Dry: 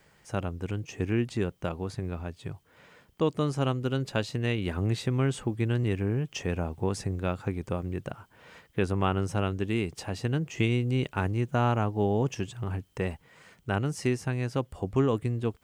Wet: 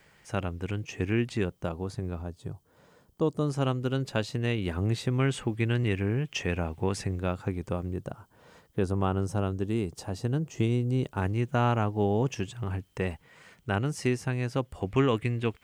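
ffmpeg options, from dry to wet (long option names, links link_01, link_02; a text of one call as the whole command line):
ffmpeg -i in.wav -af "asetnsamples=nb_out_samples=441:pad=0,asendcmd='1.45 equalizer g -5;2.22 equalizer g -13;3.5 equalizer g -1;5.2 equalizer g 6;7.18 equalizer g -1.5;7.91 equalizer g -10;11.22 equalizer g 1.5;14.81 equalizer g 11.5',equalizer=frequency=2300:width_type=o:width=1.3:gain=4" out.wav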